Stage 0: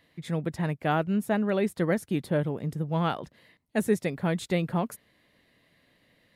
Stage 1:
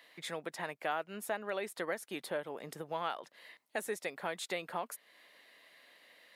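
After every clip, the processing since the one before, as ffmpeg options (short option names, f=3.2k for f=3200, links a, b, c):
-af "highpass=630,acompressor=threshold=-48dB:ratio=2,volume=6dB"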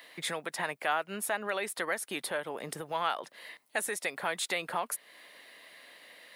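-filter_complex "[0:a]acrossover=split=770|3900[a][b][c];[a]alimiter=level_in=16dB:limit=-24dB:level=0:latency=1:release=152,volume=-16dB[d];[c]aexciter=amount=1.2:drive=6.1:freq=8.8k[e];[d][b][e]amix=inputs=3:normalize=0,volume=7.5dB"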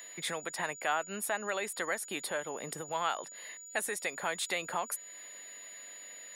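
-af "aeval=exprs='val(0)+0.00562*sin(2*PI*6900*n/s)':c=same,volume=-1.5dB"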